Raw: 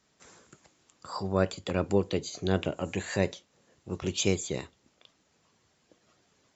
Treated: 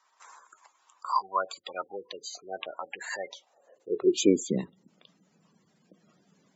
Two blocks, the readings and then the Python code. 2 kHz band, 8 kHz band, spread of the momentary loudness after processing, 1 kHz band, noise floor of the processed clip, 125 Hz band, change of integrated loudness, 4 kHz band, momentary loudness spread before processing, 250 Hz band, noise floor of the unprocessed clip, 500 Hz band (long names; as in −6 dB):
−2.0 dB, can't be measured, 16 LU, +6.5 dB, −69 dBFS, −10.0 dB, 0.0 dB, −1.5 dB, 11 LU, +1.5 dB, −70 dBFS, 0.0 dB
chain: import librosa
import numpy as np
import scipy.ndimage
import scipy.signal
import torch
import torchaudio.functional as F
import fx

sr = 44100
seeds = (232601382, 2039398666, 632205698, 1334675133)

y = fx.spec_gate(x, sr, threshold_db=-15, keep='strong')
y = fx.filter_sweep_highpass(y, sr, from_hz=1000.0, to_hz=180.0, start_s=3.25, end_s=4.65, q=5.0)